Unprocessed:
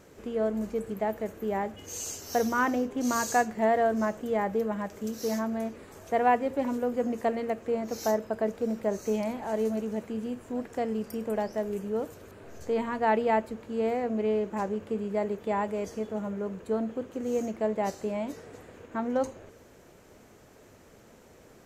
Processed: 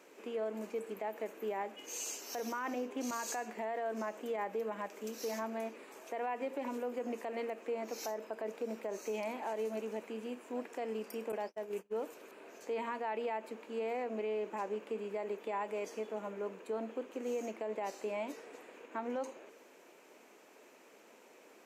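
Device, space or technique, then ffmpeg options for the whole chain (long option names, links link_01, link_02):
laptop speaker: -filter_complex "[0:a]highpass=frequency=270:width=0.5412,highpass=frequency=270:width=1.3066,equalizer=frequency=950:width_type=o:width=0.38:gain=4,equalizer=frequency=2500:width_type=o:width=0.47:gain=8,alimiter=level_in=1dB:limit=-24dB:level=0:latency=1:release=76,volume=-1dB,asettb=1/sr,asplit=3[link_01][link_02][link_03];[link_01]atrim=end=11.324[link_04];[link_02]atrim=start=11.32:end=11.93,asetpts=PTS-STARTPTS,afade=type=in:duration=0.004:curve=qsin,afade=type=out:start_time=0.606:duration=0.004:curve=qsin,agate=range=-40dB:threshold=-35dB:ratio=16:detection=peak[link_05];[link_03]atrim=start=11.926[link_06];[link_04][link_05]acrossfade=duration=0.004:curve1=hsin:curve2=qsin[link_07];[link_07][link_06]acrossfade=duration=0.004:curve1=qsin:curve2=hsin,volume=-4.5dB"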